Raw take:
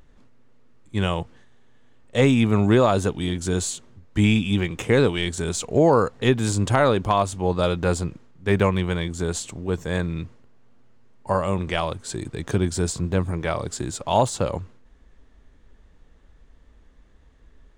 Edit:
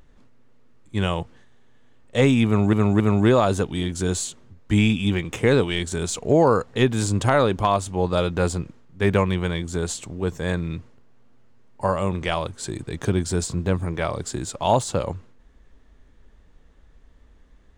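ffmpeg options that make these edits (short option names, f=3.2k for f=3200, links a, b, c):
-filter_complex "[0:a]asplit=3[a][b][c];[a]atrim=end=2.732[d];[b]atrim=start=2.458:end=2.732[e];[c]atrim=start=2.458[f];[d][e]acrossfade=d=0.004:c1=hsin:c2=hsin[g];[g][f]acrossfade=d=0.004:c1=hsin:c2=hsin"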